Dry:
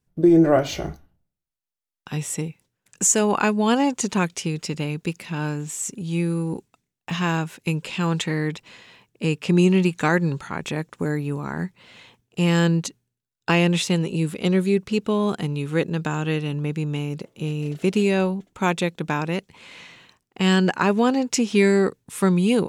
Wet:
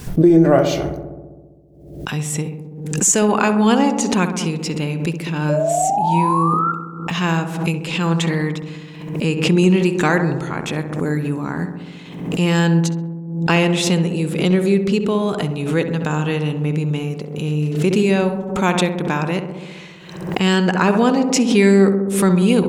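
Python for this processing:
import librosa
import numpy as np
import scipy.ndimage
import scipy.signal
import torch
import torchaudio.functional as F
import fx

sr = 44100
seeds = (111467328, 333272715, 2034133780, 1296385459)

y = fx.spec_paint(x, sr, seeds[0], shape='rise', start_s=5.49, length_s=1.23, low_hz=580.0, high_hz=1400.0, level_db=-22.0)
y = fx.echo_filtered(y, sr, ms=66, feedback_pct=79, hz=1500.0, wet_db=-8)
y = fx.pre_swell(y, sr, db_per_s=63.0)
y = y * librosa.db_to_amplitude(3.0)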